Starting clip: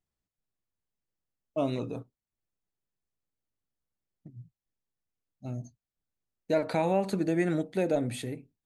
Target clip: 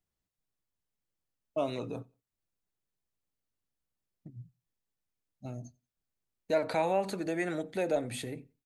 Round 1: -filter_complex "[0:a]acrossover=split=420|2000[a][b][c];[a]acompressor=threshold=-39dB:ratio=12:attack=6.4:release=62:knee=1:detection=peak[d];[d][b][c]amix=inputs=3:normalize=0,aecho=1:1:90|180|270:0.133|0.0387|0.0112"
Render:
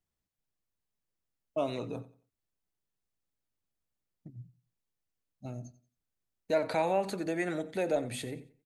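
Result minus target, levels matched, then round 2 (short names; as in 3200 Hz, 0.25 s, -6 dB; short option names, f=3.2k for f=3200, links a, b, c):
echo-to-direct +10 dB
-filter_complex "[0:a]acrossover=split=420|2000[a][b][c];[a]acompressor=threshold=-39dB:ratio=12:attack=6.4:release=62:knee=1:detection=peak[d];[d][b][c]amix=inputs=3:normalize=0,aecho=1:1:90|180:0.0398|0.0115"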